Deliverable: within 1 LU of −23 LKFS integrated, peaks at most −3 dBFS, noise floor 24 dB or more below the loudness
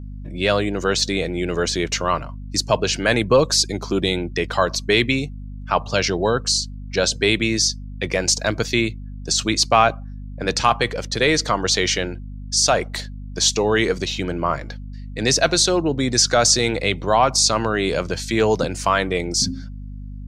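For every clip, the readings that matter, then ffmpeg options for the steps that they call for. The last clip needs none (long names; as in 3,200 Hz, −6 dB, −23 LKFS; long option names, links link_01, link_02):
mains hum 50 Hz; hum harmonics up to 250 Hz; level of the hum −30 dBFS; integrated loudness −19.5 LKFS; sample peak −2.5 dBFS; target loudness −23.0 LKFS
→ -af "bandreject=frequency=50:width_type=h:width=6,bandreject=frequency=100:width_type=h:width=6,bandreject=frequency=150:width_type=h:width=6,bandreject=frequency=200:width_type=h:width=6,bandreject=frequency=250:width_type=h:width=6"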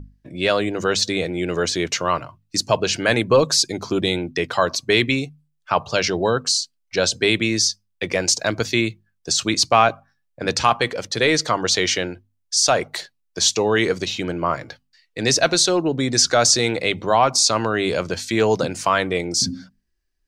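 mains hum none found; integrated loudness −19.5 LKFS; sample peak −2.5 dBFS; target loudness −23.0 LKFS
→ -af "volume=-3.5dB"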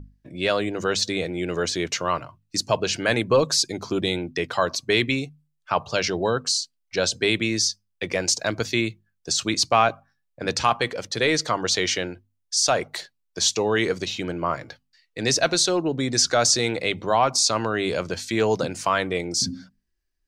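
integrated loudness −23.0 LKFS; sample peak −6.0 dBFS; background noise floor −74 dBFS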